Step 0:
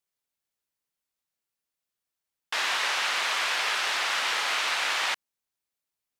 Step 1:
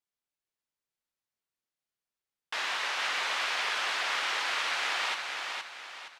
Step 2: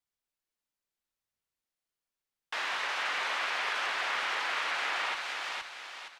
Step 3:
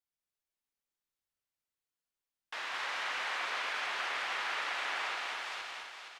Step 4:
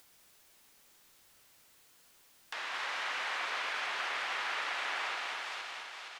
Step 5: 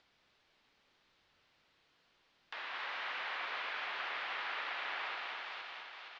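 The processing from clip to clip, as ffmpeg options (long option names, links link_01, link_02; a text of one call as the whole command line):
ffmpeg -i in.wav -af "highshelf=frequency=8400:gain=-9.5,aecho=1:1:468|936|1404|1872|2340:0.596|0.232|0.0906|0.0353|0.0138,volume=-4.5dB" out.wav
ffmpeg -i in.wav -filter_complex "[0:a]acrossover=split=130|1700|2600[link_01][link_02][link_03][link_04];[link_01]aphaser=in_gain=1:out_gain=1:delay=4:decay=0.65:speed=0.72:type=triangular[link_05];[link_04]alimiter=level_in=11.5dB:limit=-24dB:level=0:latency=1,volume=-11.5dB[link_06];[link_05][link_02][link_03][link_06]amix=inputs=4:normalize=0" out.wav
ffmpeg -i in.wav -af "aecho=1:1:102|218.7|279.9:0.316|0.708|0.355,volume=-6dB" out.wav
ffmpeg -i in.wav -af "lowshelf=frequency=82:gain=-6,acompressor=mode=upward:threshold=-40dB:ratio=2.5" out.wav
ffmpeg -i in.wav -af "lowpass=frequency=4300:width=0.5412,lowpass=frequency=4300:width=1.3066,volume=-4dB" out.wav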